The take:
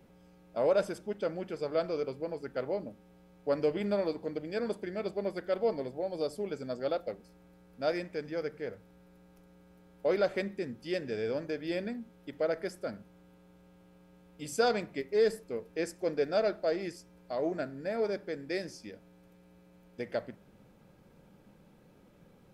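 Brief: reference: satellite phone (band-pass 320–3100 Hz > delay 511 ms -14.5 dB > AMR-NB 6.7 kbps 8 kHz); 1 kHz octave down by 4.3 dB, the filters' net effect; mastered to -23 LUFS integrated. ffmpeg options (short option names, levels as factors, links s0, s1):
-af "highpass=320,lowpass=3100,equalizer=f=1000:t=o:g=-7,aecho=1:1:511:0.188,volume=5.01" -ar 8000 -c:a libopencore_amrnb -b:a 6700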